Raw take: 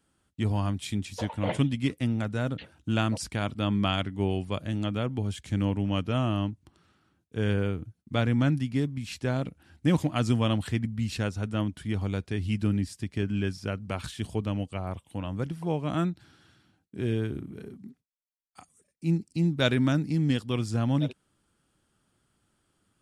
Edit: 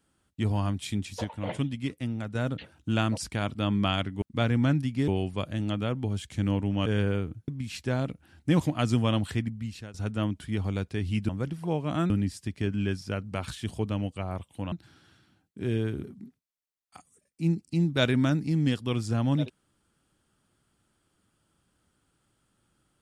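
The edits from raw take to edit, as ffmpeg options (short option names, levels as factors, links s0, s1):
-filter_complex "[0:a]asplit=12[s0][s1][s2][s3][s4][s5][s6][s7][s8][s9][s10][s11];[s0]atrim=end=1.242[s12];[s1]atrim=start=1.238:end=2.352,asetpts=PTS-STARTPTS,volume=0.596[s13];[s2]atrim=start=2.348:end=4.222[s14];[s3]atrim=start=7.988:end=8.852[s15];[s4]atrim=start=4.218:end=6.002[s16];[s5]atrim=start=7.368:end=7.992[s17];[s6]atrim=start=8.848:end=11.31,asetpts=PTS-STARTPTS,afade=t=out:st=1.852:d=0.61:silence=0.105925[s18];[s7]atrim=start=11.31:end=12.662,asetpts=PTS-STARTPTS,afade=t=in:d=0.004:c=hsin:silence=0.105925[s19];[s8]atrim=start=15.278:end=16.092[s20];[s9]atrim=start=12.658:end=15.282[s21];[s10]atrim=start=16.088:end=17.412[s22];[s11]atrim=start=17.668[s23];[s12][s13]acrossfade=d=0.004:c1=hsin:c2=hsin[s24];[s24][s14]acrossfade=d=0.004:c1=hsin:c2=hsin[s25];[s25][s15]acrossfade=d=0.004:c1=hsin:c2=hsin[s26];[s26][s16]acrossfade=d=0.004:c1=hsin:c2=hsin[s27];[s27][s17]acrossfade=d=0.004:c1=hsin:c2=hsin[s28];[s18][s19]concat=n=2:v=0:a=1[s29];[s28][s29]acrossfade=d=0.004:c1=hsin:c2=hsin[s30];[s30][s20]acrossfade=d=0.004:c1=hsin:c2=hsin[s31];[s31][s21]acrossfade=d=0.004:c1=hsin:c2=hsin[s32];[s32][s22]acrossfade=d=0.004:c1=hsin:c2=hsin[s33];[s33][s23]acrossfade=d=0.004:c1=hsin:c2=hsin"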